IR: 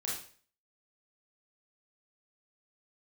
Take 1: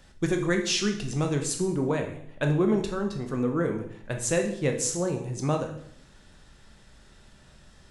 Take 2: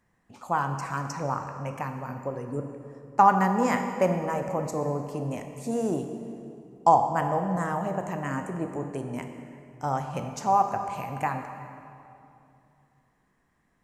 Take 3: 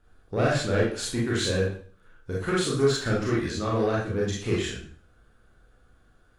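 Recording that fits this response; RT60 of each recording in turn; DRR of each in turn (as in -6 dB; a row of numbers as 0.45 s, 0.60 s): 3; 0.65 s, 2.7 s, 0.45 s; 3.5 dB, 5.5 dB, -5.0 dB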